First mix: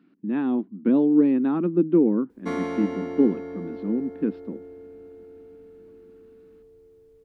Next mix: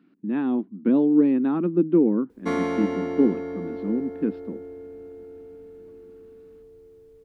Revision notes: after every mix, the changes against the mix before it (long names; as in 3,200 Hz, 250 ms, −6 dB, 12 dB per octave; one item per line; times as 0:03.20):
background +3.5 dB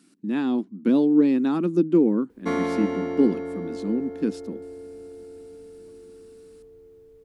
speech: remove Gaussian smoothing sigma 3.3 samples